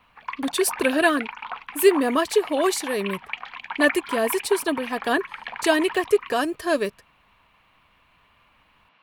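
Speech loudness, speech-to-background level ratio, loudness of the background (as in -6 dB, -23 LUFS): -23.0 LUFS, 11.0 dB, -34.0 LUFS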